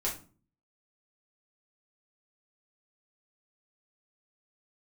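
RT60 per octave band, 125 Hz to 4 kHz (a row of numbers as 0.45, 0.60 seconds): 0.65, 0.60, 0.40, 0.35, 0.30, 0.25 seconds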